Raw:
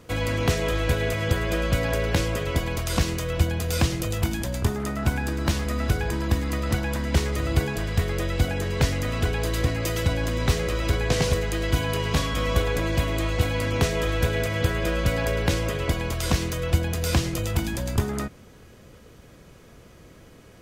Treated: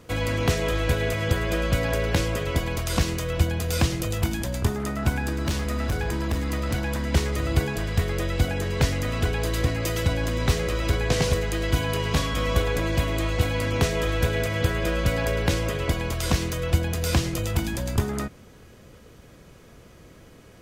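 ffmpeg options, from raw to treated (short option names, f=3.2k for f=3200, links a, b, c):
-filter_complex "[0:a]asettb=1/sr,asplit=3[a][b][c];[a]atrim=end=5.444[d];[b]atrim=start=5.44:end=7.02,asetpts=PTS-STARTPTS,afade=t=in:d=0.004:c=qsin,afade=t=out:st=1.576:d=0.004:c=qsin,asoftclip=type=hard:threshold=-20.5dB[e];[c]atrim=start=7.016[f];[d][e]acrossfade=d=0.004:c1=hsin:c2=qsin[g];[g][f]acrossfade=d=0.004:c1=qsin:c2=hsin"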